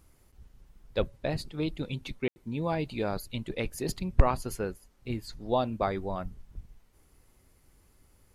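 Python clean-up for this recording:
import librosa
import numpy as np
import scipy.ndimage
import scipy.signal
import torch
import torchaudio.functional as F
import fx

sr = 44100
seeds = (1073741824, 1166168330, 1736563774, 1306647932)

y = fx.fix_declip(x, sr, threshold_db=-7.0)
y = fx.fix_ambience(y, sr, seeds[0], print_start_s=6.85, print_end_s=7.35, start_s=2.28, end_s=2.36)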